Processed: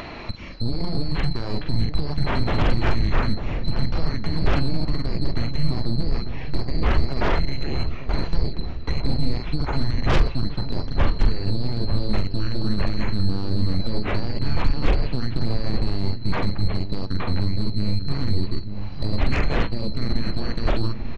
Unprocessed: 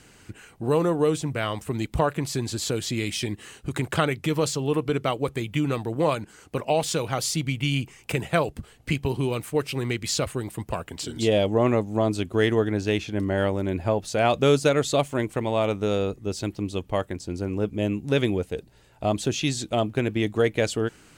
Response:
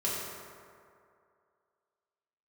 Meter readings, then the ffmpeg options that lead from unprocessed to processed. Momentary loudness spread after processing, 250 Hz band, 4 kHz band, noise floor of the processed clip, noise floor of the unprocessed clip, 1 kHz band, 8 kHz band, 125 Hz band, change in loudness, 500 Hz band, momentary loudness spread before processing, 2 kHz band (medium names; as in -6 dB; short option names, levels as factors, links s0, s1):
6 LU, -1.0 dB, 0.0 dB, -29 dBFS, -54 dBFS, -3.0 dB, under -15 dB, +4.5 dB, -0.5 dB, -8.5 dB, 9 LU, -1.5 dB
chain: -filter_complex "[0:a]afftfilt=real='real(if(lt(b,736),b+184*(1-2*mod(floor(b/184),2)),b),0)':imag='imag(if(lt(b,736),b+184*(1-2*mod(floor(b/184),2)),b),0)':win_size=2048:overlap=0.75,asplit=2[s0][s1];[s1]adelay=43,volume=0.473[s2];[s0][s2]amix=inputs=2:normalize=0,asubboost=boost=6.5:cutoff=58,deesser=0.6,aeval=exprs='0.178*(cos(1*acos(clip(val(0)/0.178,-1,1)))-cos(1*PI/2))+0.0282*(cos(6*acos(clip(val(0)/0.178,-1,1)))-cos(6*PI/2))+0.0112*(cos(8*acos(clip(val(0)/0.178,-1,1)))-cos(8*PI/2))':c=same,acrusher=bits=11:mix=0:aa=0.000001,lowpass=f=2400:w=0.5412,lowpass=f=2400:w=1.3066,flanger=delay=2.8:depth=5.9:regen=-85:speed=0.14:shape=triangular,acompressor=mode=upward:threshold=0.00708:ratio=2.5,aeval=exprs='0.0944*sin(PI/2*3.98*val(0)/0.0944)':c=same,lowshelf=f=350:g=11.5,asplit=2[s3][s4];[s4]adelay=895,lowpass=f=900:p=1,volume=0.376,asplit=2[s5][s6];[s6]adelay=895,lowpass=f=900:p=1,volume=0.54,asplit=2[s7][s8];[s8]adelay=895,lowpass=f=900:p=1,volume=0.54,asplit=2[s9][s10];[s10]adelay=895,lowpass=f=900:p=1,volume=0.54,asplit=2[s11][s12];[s12]adelay=895,lowpass=f=900:p=1,volume=0.54,asplit=2[s13][s14];[s14]adelay=895,lowpass=f=900:p=1,volume=0.54[s15];[s5][s7][s9][s11][s13][s15]amix=inputs=6:normalize=0[s16];[s3][s16]amix=inputs=2:normalize=0"